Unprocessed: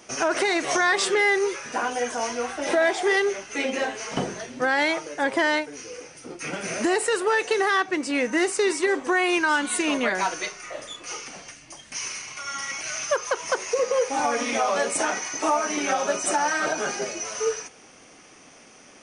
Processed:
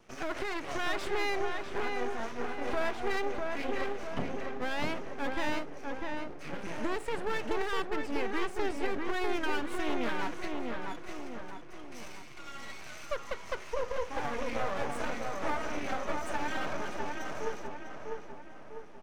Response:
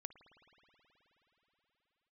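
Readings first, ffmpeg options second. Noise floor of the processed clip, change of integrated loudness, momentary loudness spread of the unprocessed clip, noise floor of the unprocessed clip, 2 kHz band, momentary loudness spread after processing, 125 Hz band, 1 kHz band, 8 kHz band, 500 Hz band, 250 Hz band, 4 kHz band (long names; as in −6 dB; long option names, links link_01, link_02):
−44 dBFS, −11.5 dB, 13 LU, −50 dBFS, −12.5 dB, 11 LU, −1.0 dB, −10.0 dB, −22.0 dB, −10.5 dB, −8.5 dB, −12.0 dB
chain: -filter_complex "[0:a]bass=frequency=250:gain=7,treble=frequency=4000:gain=-14,aeval=exprs='max(val(0),0)':channel_layout=same,asplit=2[link_01][link_02];[link_02]adelay=649,lowpass=frequency=2200:poles=1,volume=-3dB,asplit=2[link_03][link_04];[link_04]adelay=649,lowpass=frequency=2200:poles=1,volume=0.52,asplit=2[link_05][link_06];[link_06]adelay=649,lowpass=frequency=2200:poles=1,volume=0.52,asplit=2[link_07][link_08];[link_08]adelay=649,lowpass=frequency=2200:poles=1,volume=0.52,asplit=2[link_09][link_10];[link_10]adelay=649,lowpass=frequency=2200:poles=1,volume=0.52,asplit=2[link_11][link_12];[link_12]adelay=649,lowpass=frequency=2200:poles=1,volume=0.52,asplit=2[link_13][link_14];[link_14]adelay=649,lowpass=frequency=2200:poles=1,volume=0.52[link_15];[link_01][link_03][link_05][link_07][link_09][link_11][link_13][link_15]amix=inputs=8:normalize=0,volume=-7.5dB"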